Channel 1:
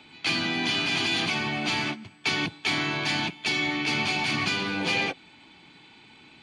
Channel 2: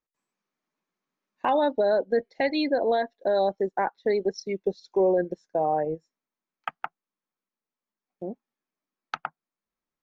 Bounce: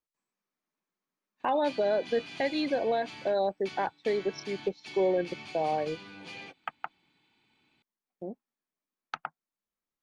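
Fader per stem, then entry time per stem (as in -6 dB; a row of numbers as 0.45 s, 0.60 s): -18.5 dB, -4.5 dB; 1.40 s, 0.00 s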